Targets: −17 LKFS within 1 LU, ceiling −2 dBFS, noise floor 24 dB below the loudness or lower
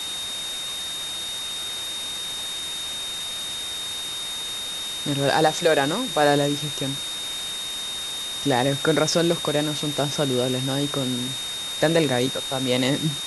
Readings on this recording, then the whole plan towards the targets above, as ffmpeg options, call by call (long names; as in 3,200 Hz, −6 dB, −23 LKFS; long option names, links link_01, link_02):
interfering tone 3,700 Hz; level of the tone −29 dBFS; background noise floor −31 dBFS; target noise floor −48 dBFS; integrated loudness −24.0 LKFS; sample peak −6.5 dBFS; target loudness −17.0 LKFS
→ -af "bandreject=frequency=3700:width=30"
-af "afftdn=noise_reduction=17:noise_floor=-31"
-af "volume=7dB,alimiter=limit=-2dB:level=0:latency=1"